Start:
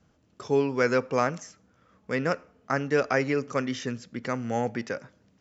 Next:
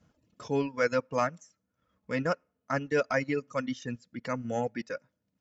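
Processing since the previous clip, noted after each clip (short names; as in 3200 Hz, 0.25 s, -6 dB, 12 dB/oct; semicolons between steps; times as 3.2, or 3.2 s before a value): notch comb 390 Hz; transient shaper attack -3 dB, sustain -7 dB; reverb removal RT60 1.9 s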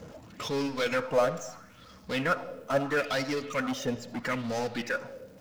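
power-law curve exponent 0.5; reverb RT60 0.95 s, pre-delay 25 ms, DRR 11.5 dB; LFO bell 0.76 Hz 460–5300 Hz +12 dB; gain -8 dB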